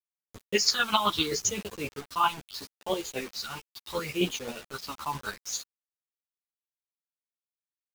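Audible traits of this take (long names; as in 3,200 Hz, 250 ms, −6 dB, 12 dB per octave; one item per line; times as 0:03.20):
phaser sweep stages 6, 0.75 Hz, lowest notch 470–1,500 Hz
chopped level 7.6 Hz, depth 60%, duty 25%
a quantiser's noise floor 8 bits, dither none
a shimmering, thickened sound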